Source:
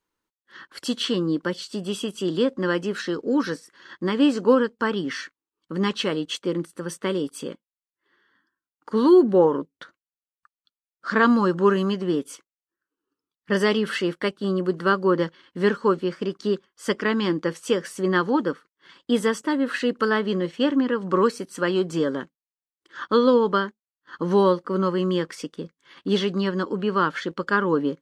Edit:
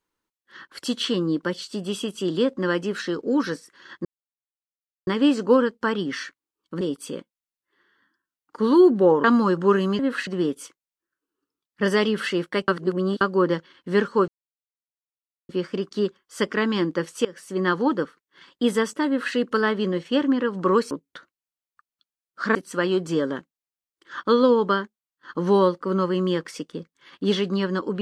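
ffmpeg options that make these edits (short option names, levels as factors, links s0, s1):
-filter_complex "[0:a]asplit=12[s0][s1][s2][s3][s4][s5][s6][s7][s8][s9][s10][s11];[s0]atrim=end=4.05,asetpts=PTS-STARTPTS,afade=t=out:st=4.046:d=0.004:c=hsin,apad=pad_dur=1.02[s12];[s1]atrim=start=4.05:end=5.792,asetpts=PTS-STARTPTS,afade=t=in:d=0.004:c=hsin[s13];[s2]atrim=start=7.138:end=9.572[s14];[s3]atrim=start=11.208:end=11.962[s15];[s4]atrim=start=19.548:end=19.832[s16];[s5]atrim=start=11.958:end=14.372[s17];[s6]atrim=start=14.368:end=14.902,asetpts=PTS-STARTPTS,areverse[s18];[s7]atrim=start=14.898:end=15.97,asetpts=PTS-STARTPTS,afade=t=out:st=1.068:d=0.004:c=hsin,apad=pad_dur=1.21[s19];[s8]atrim=start=15.97:end=17.73,asetpts=PTS-STARTPTS,afade=t=in:d=0.004:c=hsin,afade=t=out:st=1.756:d=0.004:c=hsin:silence=0.11885[s20];[s9]atrim=start=17.73:end=21.392,asetpts=PTS-STARTPTS,afade=t=in:d=0.63:c=qsin:silence=0.11885[s21];[s10]atrim=start=9.568:end=11.212[s22];[s11]atrim=start=21.388[s23];[s12][s13]concat=n=2:v=0:a=1[s24];[s24][s14]acrossfade=d=0.004:c1=hsin:c2=hsin[s25];[s25][s15]acrossfade=d=0.004:c1=hsin:c2=hsin[s26];[s26][s16]acrossfade=d=0.004:c1=hsin:c2=hsin[s27];[s27][s17]acrossfade=d=0.004:c1=hsin:c2=hsin[s28];[s28][s18]acrossfade=d=0.004:c1=hsin:c2=hsin[s29];[s19][s20][s21]concat=n=3:v=0:a=1[s30];[s29][s30]acrossfade=d=0.004:c1=hsin:c2=hsin[s31];[s31][s22]acrossfade=d=0.004:c1=hsin:c2=hsin[s32];[s32][s23]acrossfade=d=0.004:c1=hsin:c2=hsin"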